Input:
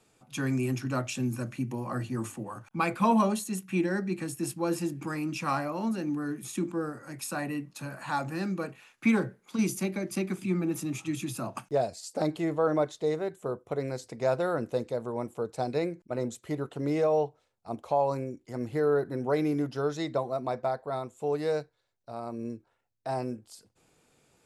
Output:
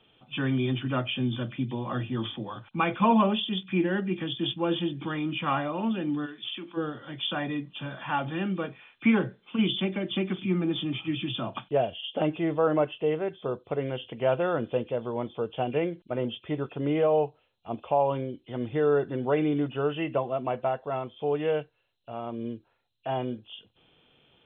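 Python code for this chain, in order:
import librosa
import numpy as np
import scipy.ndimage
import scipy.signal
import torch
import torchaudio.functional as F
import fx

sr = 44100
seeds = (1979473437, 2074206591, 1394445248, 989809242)

y = fx.freq_compress(x, sr, knee_hz=2400.0, ratio=4.0)
y = fx.highpass(y, sr, hz=1200.0, slope=6, at=(6.25, 6.76), fade=0.02)
y = y * 10.0 ** (2.0 / 20.0)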